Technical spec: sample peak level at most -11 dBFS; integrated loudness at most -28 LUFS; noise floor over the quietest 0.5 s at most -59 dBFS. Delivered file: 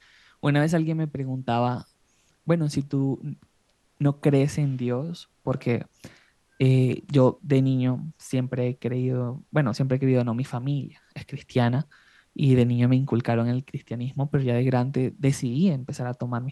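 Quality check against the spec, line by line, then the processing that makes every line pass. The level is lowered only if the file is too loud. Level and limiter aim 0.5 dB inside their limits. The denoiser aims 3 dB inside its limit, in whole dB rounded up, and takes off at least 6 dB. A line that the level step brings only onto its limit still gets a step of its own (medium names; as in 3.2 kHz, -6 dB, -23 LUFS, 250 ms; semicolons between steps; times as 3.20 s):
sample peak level -7.5 dBFS: fail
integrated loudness -25.0 LUFS: fail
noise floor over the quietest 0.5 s -67 dBFS: pass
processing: trim -3.5 dB; peak limiter -11.5 dBFS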